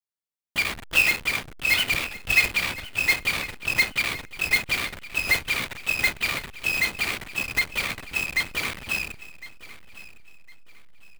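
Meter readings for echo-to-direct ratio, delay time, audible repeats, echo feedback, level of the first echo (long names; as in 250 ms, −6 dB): −17.0 dB, 1,058 ms, 2, 30%, −17.5 dB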